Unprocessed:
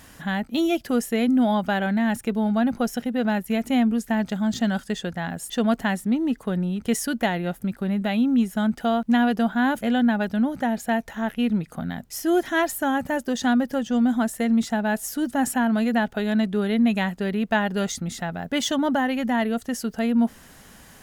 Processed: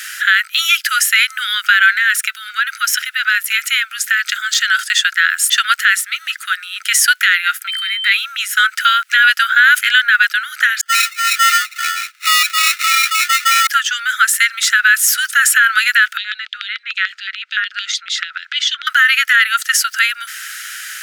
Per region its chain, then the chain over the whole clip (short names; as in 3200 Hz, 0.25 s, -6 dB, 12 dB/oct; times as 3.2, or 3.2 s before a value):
1.97–4.92 HPF 520 Hz 6 dB/oct + compressor 2:1, threshold -29 dBFS
7.67–8.11 ripple EQ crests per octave 0.95, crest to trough 12 dB + compressor 2.5:1, threshold -27 dBFS + whine 3100 Hz -42 dBFS
10.81–13.67 dispersion highs, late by 0.113 s, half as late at 670 Hz + sample-rate reducer 1600 Hz + notch comb 380 Hz
16.17–18.87 compressor 3:1, threshold -32 dBFS + LFO high-pass square 6.8 Hz 220–3500 Hz + air absorption 150 m
whole clip: Chebyshev high-pass 1300 Hz, order 8; high shelf 3800 Hz -4.5 dB; maximiser +26.5 dB; gain -1 dB